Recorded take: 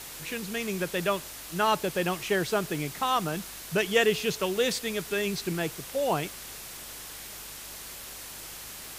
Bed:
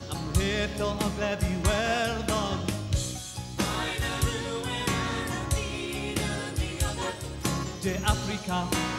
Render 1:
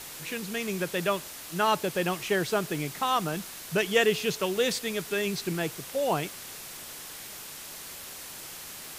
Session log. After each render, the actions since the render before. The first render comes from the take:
hum removal 50 Hz, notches 2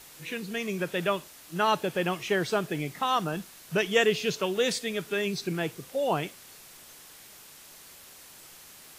noise reduction from a noise print 8 dB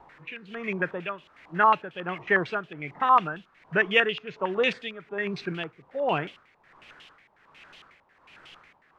amplitude tremolo 1.3 Hz, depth 75%
low-pass on a step sequencer 11 Hz 920–3,000 Hz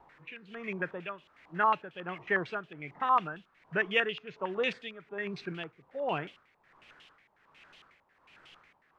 level −6.5 dB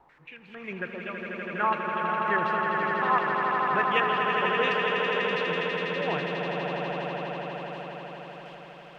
echo that builds up and dies away 82 ms, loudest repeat 8, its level −6 dB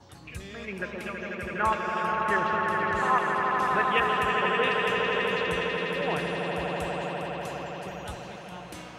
mix in bed −15.5 dB

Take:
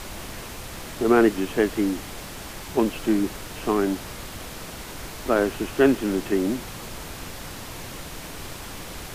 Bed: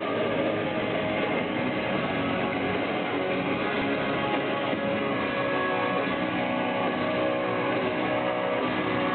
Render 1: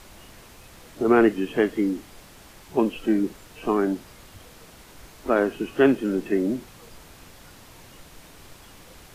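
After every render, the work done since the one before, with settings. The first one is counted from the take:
noise reduction from a noise print 11 dB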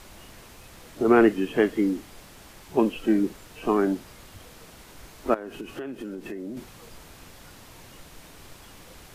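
0:05.34–0:06.57: downward compressor 16 to 1, threshold −31 dBFS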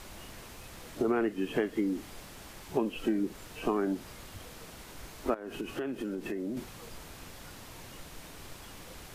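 downward compressor 6 to 1, threshold −26 dBFS, peak gain reduction 13 dB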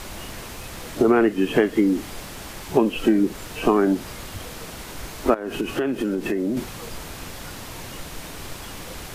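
level +11.5 dB

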